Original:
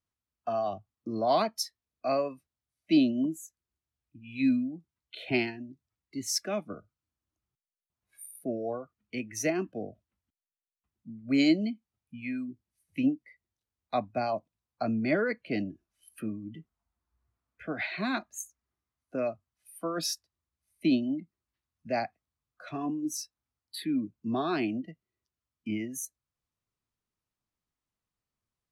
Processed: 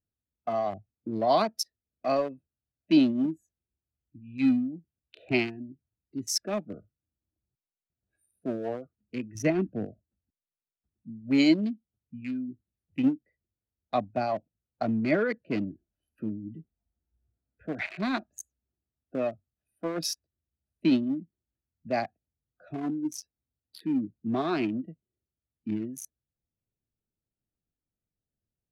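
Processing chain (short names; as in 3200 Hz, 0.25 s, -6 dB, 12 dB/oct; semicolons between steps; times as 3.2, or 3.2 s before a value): Wiener smoothing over 41 samples; 9.35–9.85 tone controls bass +8 dB, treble -7 dB; gain +2.5 dB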